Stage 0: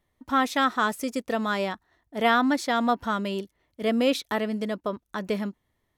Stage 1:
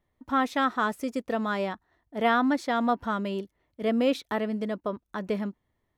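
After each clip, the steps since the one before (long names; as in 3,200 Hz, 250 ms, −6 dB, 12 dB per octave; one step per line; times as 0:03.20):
parametric band 12,000 Hz −8.5 dB 2.9 octaves
level −1 dB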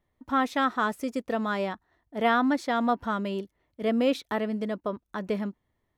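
no processing that can be heard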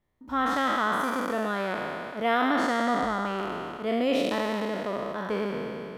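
peak hold with a decay on every bin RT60 2.87 s
level −4 dB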